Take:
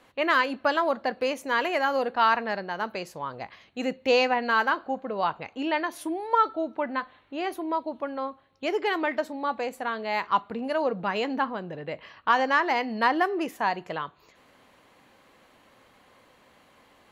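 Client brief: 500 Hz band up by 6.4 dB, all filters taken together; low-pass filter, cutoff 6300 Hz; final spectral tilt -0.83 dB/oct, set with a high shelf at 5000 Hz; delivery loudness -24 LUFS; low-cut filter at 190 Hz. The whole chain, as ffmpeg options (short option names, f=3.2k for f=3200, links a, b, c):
-af "highpass=190,lowpass=6.3k,equalizer=f=500:t=o:g=7.5,highshelf=f=5k:g=5.5"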